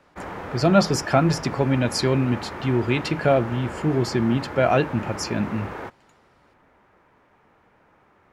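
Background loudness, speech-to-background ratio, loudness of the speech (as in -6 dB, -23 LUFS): -34.5 LUFS, 12.0 dB, -22.5 LUFS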